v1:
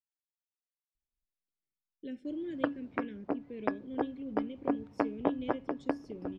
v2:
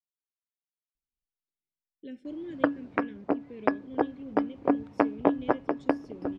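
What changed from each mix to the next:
background +7.0 dB; master: add bass shelf 110 Hz -5 dB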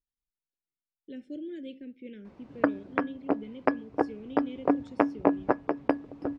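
speech: entry -0.95 s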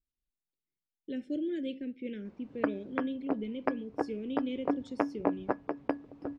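speech +5.0 dB; background -6.0 dB

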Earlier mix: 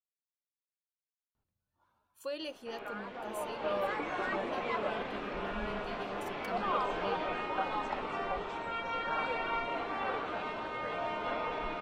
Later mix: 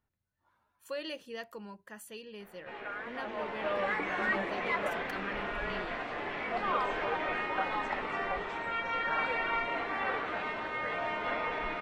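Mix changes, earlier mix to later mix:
speech: entry -1.35 s; master: add peaking EQ 1.9 kHz +9.5 dB 0.55 oct

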